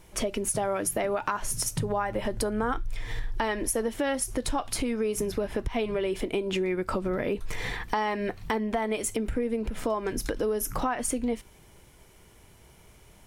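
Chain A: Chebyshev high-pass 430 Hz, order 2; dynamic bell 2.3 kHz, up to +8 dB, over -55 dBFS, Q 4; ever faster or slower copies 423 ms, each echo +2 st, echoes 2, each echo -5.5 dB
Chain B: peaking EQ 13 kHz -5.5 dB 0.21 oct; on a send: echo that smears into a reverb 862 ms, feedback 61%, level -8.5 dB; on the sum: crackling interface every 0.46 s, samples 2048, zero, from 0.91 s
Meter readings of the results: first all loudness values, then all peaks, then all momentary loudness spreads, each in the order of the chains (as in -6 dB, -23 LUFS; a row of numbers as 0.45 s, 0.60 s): -29.5 LUFS, -29.5 LUFS; -11.5 dBFS, -11.0 dBFS; 4 LU, 9 LU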